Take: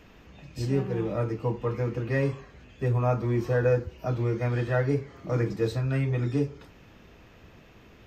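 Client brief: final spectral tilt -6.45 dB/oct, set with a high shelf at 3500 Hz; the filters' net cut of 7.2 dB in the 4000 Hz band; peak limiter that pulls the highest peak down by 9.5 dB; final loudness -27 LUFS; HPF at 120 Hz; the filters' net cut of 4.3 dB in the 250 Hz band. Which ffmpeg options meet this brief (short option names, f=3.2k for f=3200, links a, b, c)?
-af "highpass=120,equalizer=f=250:t=o:g=-5.5,highshelf=f=3.5k:g=-6,equalizer=f=4k:t=o:g=-5,volume=7dB,alimiter=limit=-17dB:level=0:latency=1"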